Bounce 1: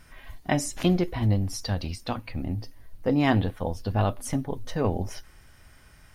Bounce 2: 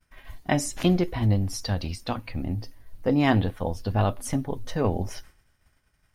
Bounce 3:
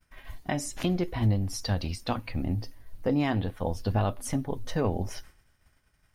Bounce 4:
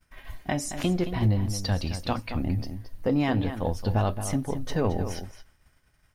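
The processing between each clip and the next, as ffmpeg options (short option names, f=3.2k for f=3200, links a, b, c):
-af "agate=range=-33dB:threshold=-41dB:ratio=3:detection=peak,volume=1dB"
-af "alimiter=limit=-15.5dB:level=0:latency=1:release=491"
-filter_complex "[0:a]asplit=2[a][b];[b]adelay=221.6,volume=-10dB,highshelf=f=4k:g=-4.99[c];[a][c]amix=inputs=2:normalize=0,asplit=2[d][e];[e]volume=22dB,asoftclip=hard,volume=-22dB,volume=-12dB[f];[d][f]amix=inputs=2:normalize=0"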